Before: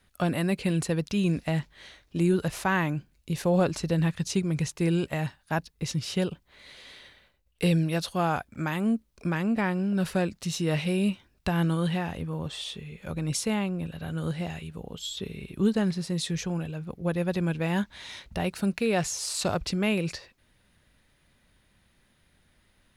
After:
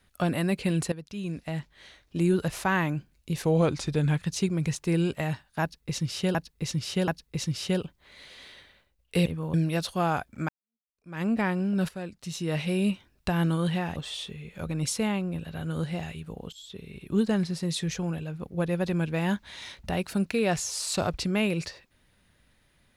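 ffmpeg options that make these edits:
-filter_complex "[0:a]asplit=12[a][b][c][d][e][f][g][h][i][j][k][l];[a]atrim=end=0.92,asetpts=PTS-STARTPTS,afade=t=out:st=0.916:d=0.004:c=hsin:silence=0.188365[m];[b]atrim=start=0.92:end=3.434,asetpts=PTS-STARTPTS,afade=t=in:d=1.4:silence=0.188365[n];[c]atrim=start=3.43:end=4.11,asetpts=PTS-STARTPTS,asetrate=40131,aresample=44100[o];[d]atrim=start=4.106:end=6.282[p];[e]atrim=start=5.548:end=6.282[q];[f]atrim=start=5.548:end=7.732[r];[g]atrim=start=12.158:end=12.442[s];[h]atrim=start=7.728:end=8.68,asetpts=PTS-STARTPTS,afade=t=out:st=0.948:d=0.004:c=hsin[t];[i]atrim=start=8.68:end=10.08,asetpts=PTS-STARTPTS,afade=t=in:d=0.73:c=exp,afade=t=out:st=1.396:d=0.004:c=hsin:silence=0.199526[u];[j]atrim=start=10.08:end=12.162,asetpts=PTS-STARTPTS,afade=t=in:d=0.91:silence=0.199526[v];[k]atrim=start=12.438:end=15,asetpts=PTS-STARTPTS,afade=t=out:st=2.558:d=0.004:c=hsin:silence=0.177828[w];[l]atrim=start=15,asetpts=PTS-STARTPTS,afade=t=in:d=0.73:silence=0.177828[x];[m][n]concat=n=2:v=0:a=1[y];[y][o]acrossfade=d=0.004:c1=hsin:c2=hsin[z];[z][p]acrossfade=d=0.004:c1=hsin:c2=hsin[aa];[aa][q]acrossfade=d=0.004:c1=hsin:c2=hsin[ab];[ab][r]acrossfade=d=0.004:c1=hsin:c2=hsin[ac];[ac][s]acrossfade=d=0.004:c1=hsin:c2=hsin[ad];[t][u][v]concat=n=3:v=0:a=1[ae];[ad][ae]acrossfade=d=0.004:c1=hsin:c2=hsin[af];[w][x]concat=n=2:v=0:a=1[ag];[af][ag]acrossfade=d=0.004:c1=hsin:c2=hsin"

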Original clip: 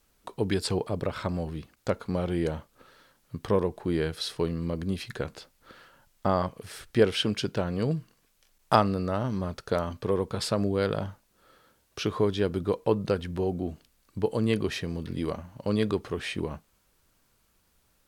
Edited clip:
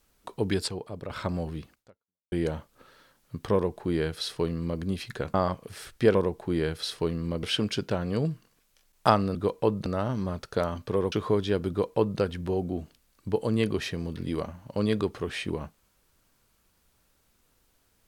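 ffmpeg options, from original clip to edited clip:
-filter_complex "[0:a]asplit=10[a][b][c][d][e][f][g][h][i][j];[a]atrim=end=0.682[k];[b]atrim=start=0.678:end=1.102,asetpts=PTS-STARTPTS,volume=-8dB[l];[c]atrim=start=1.098:end=2.32,asetpts=PTS-STARTPTS,afade=t=out:st=0.632:d=0.59:c=exp[m];[d]atrim=start=2.32:end=5.342,asetpts=PTS-STARTPTS,afade=t=in:d=0.004:c=hsin[n];[e]atrim=start=6.278:end=7.092[o];[f]atrim=start=3.528:end=4.812[p];[g]atrim=start=7.088:end=9.012[q];[h]atrim=start=12.588:end=13.102[r];[i]atrim=start=9.008:end=10.272[s];[j]atrim=start=12.018[t];[k][l]acrossfade=d=0.004:c1=hsin:c2=hsin[u];[m][n]concat=n=2:v=0:a=1[v];[u][v]acrossfade=d=0.004:c1=hsin:c2=hsin[w];[w][o]acrossfade=d=0.004:c1=hsin:c2=hsin[x];[x][p]acrossfade=d=0.004:c1=hsin:c2=hsin[y];[y][q]acrossfade=d=0.004:c1=hsin:c2=hsin[z];[z][r]acrossfade=d=0.004:c1=hsin:c2=hsin[aa];[aa][s]acrossfade=d=0.004:c1=hsin:c2=hsin[ab];[ab][t]acrossfade=d=0.004:c1=hsin:c2=hsin"

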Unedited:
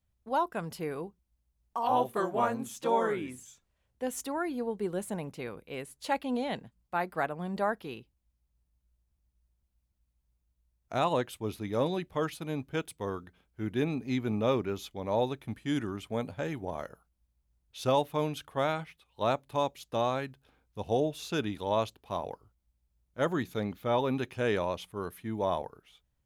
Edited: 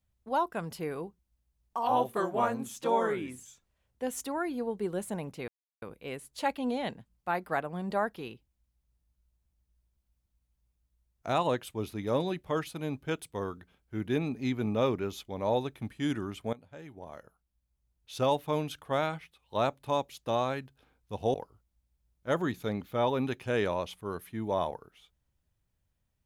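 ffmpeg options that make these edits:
-filter_complex "[0:a]asplit=4[a][b][c][d];[a]atrim=end=5.48,asetpts=PTS-STARTPTS,afade=t=out:st=5.476:d=0.004:c=hsin,apad=pad_dur=0.34[e];[b]atrim=start=5.48:end=16.19,asetpts=PTS-STARTPTS,afade=t=in:d=0.004:c=hsin,afade=t=out:st=10.706:d=0.004:c=hsin:silence=0.11885[f];[c]atrim=start=16.19:end=21.002,asetpts=PTS-STARTPTS,afade=t=in:d=1.93:silence=0.11885[g];[d]atrim=start=22.248[h];[e][f][g]concat=n=3:v=0:a=1[i];[i][h]acrossfade=d=0.004:c1=hsin:c2=hsin"

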